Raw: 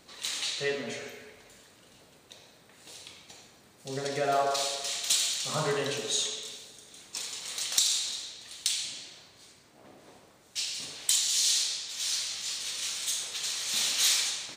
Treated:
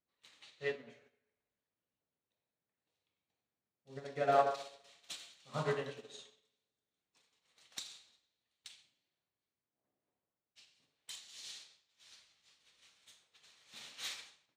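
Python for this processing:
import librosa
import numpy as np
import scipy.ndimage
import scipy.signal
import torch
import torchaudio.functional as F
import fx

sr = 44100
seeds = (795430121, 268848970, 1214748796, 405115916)

y = fx.bass_treble(x, sr, bass_db=2, treble_db=-13)
y = fx.upward_expand(y, sr, threshold_db=-48.0, expansion=2.5)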